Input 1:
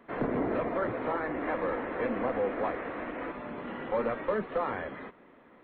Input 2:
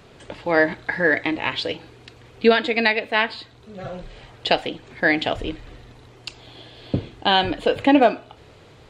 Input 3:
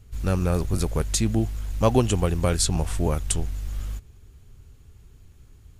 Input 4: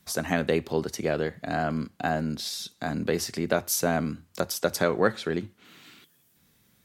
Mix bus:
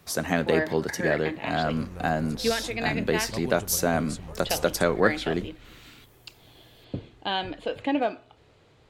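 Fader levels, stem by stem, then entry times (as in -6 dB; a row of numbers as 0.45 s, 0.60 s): -17.5 dB, -10.5 dB, -17.0 dB, +1.0 dB; 0.00 s, 0.00 s, 1.50 s, 0.00 s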